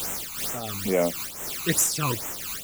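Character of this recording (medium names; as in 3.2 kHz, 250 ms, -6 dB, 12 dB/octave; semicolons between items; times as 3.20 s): a quantiser's noise floor 6-bit, dither triangular; phasing stages 12, 2.3 Hz, lowest notch 540–4500 Hz; random flutter of the level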